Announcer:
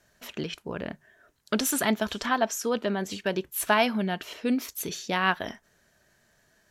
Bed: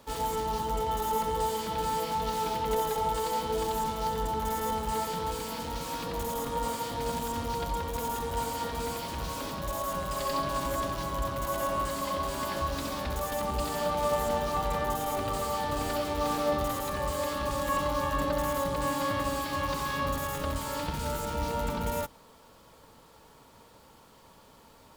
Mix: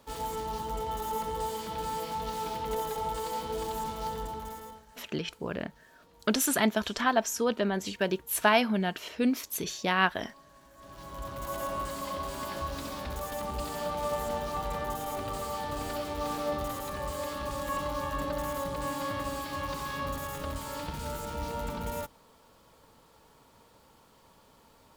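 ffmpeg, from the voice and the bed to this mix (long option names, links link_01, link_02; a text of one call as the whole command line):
ffmpeg -i stem1.wav -i stem2.wav -filter_complex "[0:a]adelay=4750,volume=-0.5dB[link_01];[1:a]volume=18.5dB,afade=type=out:start_time=4.09:duration=0.76:silence=0.0749894,afade=type=in:start_time=10.76:duration=0.78:silence=0.0749894[link_02];[link_01][link_02]amix=inputs=2:normalize=0" out.wav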